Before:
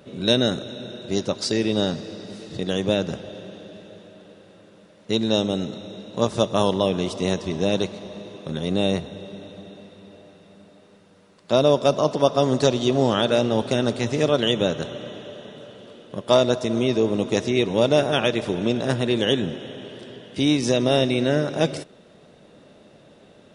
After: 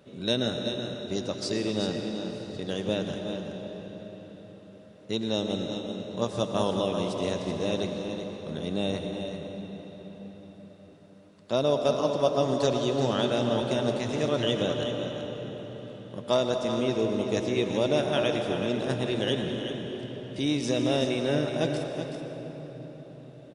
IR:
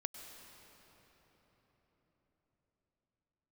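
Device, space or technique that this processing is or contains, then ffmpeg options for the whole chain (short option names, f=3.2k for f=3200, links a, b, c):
cave: -filter_complex "[0:a]aecho=1:1:378:0.376[a];[1:a]atrim=start_sample=2205[b];[a][b]afir=irnorm=-1:irlink=0,volume=-5dB"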